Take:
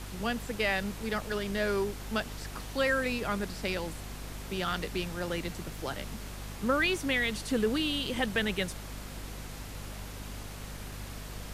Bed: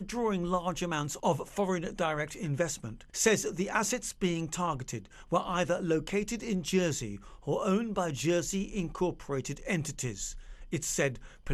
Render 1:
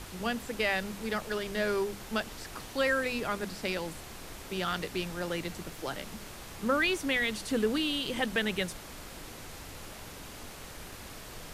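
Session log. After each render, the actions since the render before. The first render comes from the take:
mains-hum notches 50/100/150/200/250 Hz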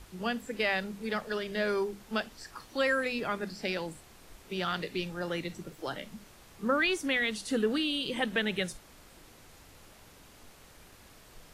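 noise reduction from a noise print 10 dB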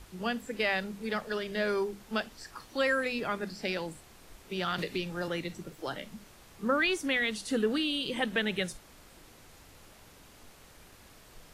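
0:04.78–0:05.28: multiband upward and downward compressor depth 70%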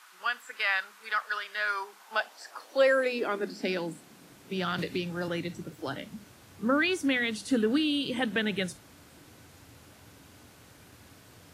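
high-pass filter sweep 1,200 Hz → 96 Hz, 0:01.70–0:04.84
hollow resonant body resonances 280/1,500 Hz, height 6 dB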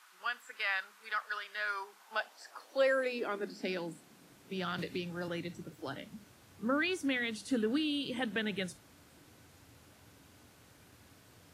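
level −6 dB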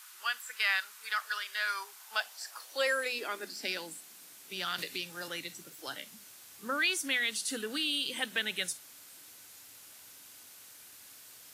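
spectral tilt +4.5 dB per octave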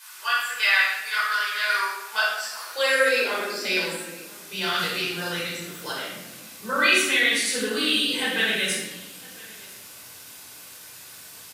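single-tap delay 1,006 ms −22.5 dB
rectangular room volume 530 cubic metres, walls mixed, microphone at 5 metres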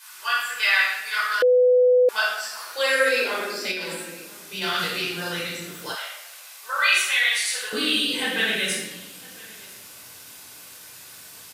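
0:01.42–0:02.09: beep over 499 Hz −13 dBFS
0:03.71–0:04.62: downward compressor, threshold −26 dBFS
0:05.95–0:07.73: high-pass filter 700 Hz 24 dB per octave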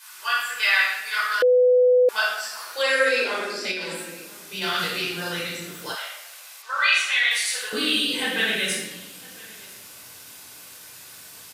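0:02.82–0:03.95: low-pass filter 9,300 Hz
0:06.62–0:07.31: three-way crossover with the lows and the highs turned down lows −12 dB, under 540 Hz, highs −14 dB, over 7,200 Hz

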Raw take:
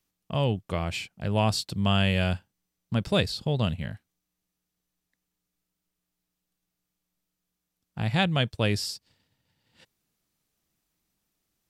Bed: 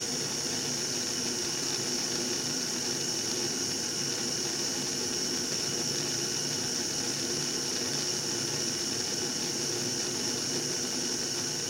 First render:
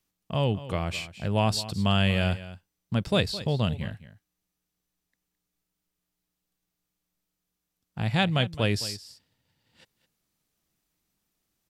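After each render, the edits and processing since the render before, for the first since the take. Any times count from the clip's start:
single-tap delay 214 ms −15.5 dB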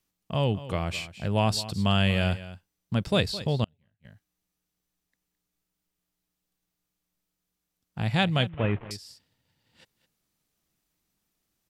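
0:03.64–0:04.05: gate with flip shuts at −31 dBFS, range −37 dB
0:08.49–0:08.91: variable-slope delta modulation 16 kbit/s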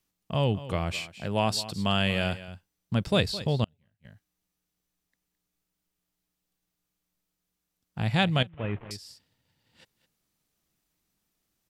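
0:00.92–0:02.48: high-pass filter 180 Hz 6 dB per octave
0:08.43–0:09.04: fade in, from −13.5 dB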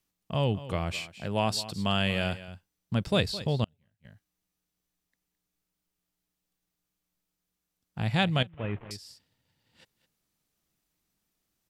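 level −1.5 dB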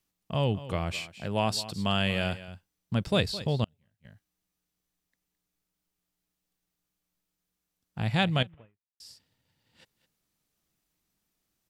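0:08.53–0:09.00: fade out exponential

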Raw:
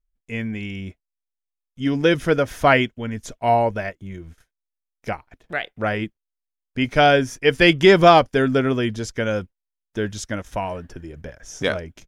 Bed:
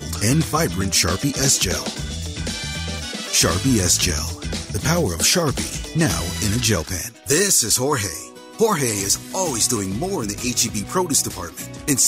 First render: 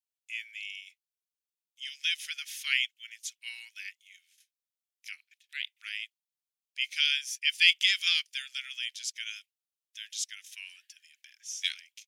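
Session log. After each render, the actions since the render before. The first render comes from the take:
Butterworth high-pass 2,400 Hz 36 dB per octave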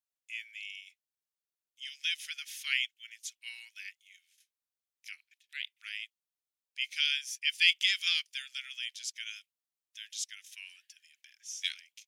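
level −3 dB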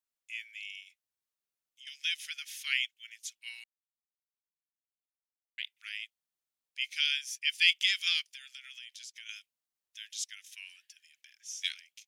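0:00.82–0:01.87: downward compressor, threshold −49 dBFS
0:03.64–0:05.58: silence
0:08.30–0:09.29: downward compressor, threshold −43 dBFS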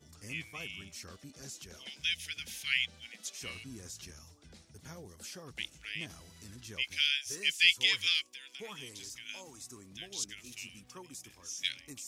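mix in bed −29.5 dB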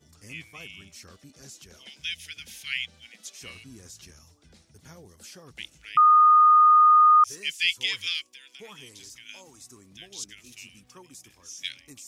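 0:05.97–0:07.24: beep over 1,230 Hz −12.5 dBFS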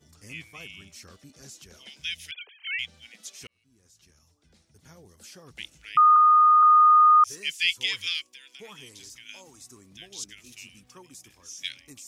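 0:02.31–0:02.79: three sine waves on the formant tracks
0:03.47–0:05.62: fade in
0:06.16–0:06.63: low-pass filter 1,800 Hz

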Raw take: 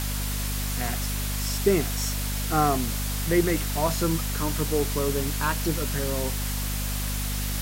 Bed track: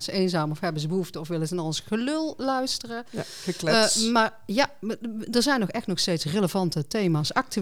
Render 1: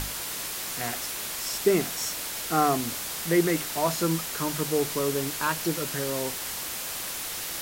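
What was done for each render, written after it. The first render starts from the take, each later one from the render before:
mains-hum notches 50/100/150/200/250 Hz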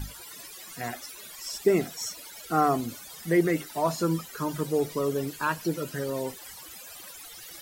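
broadband denoise 18 dB, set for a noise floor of −34 dBFS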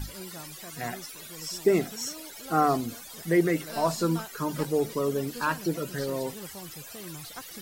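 mix in bed track −19.5 dB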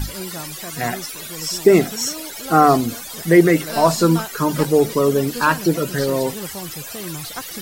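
level +11 dB
brickwall limiter −1 dBFS, peak gain reduction 1.5 dB

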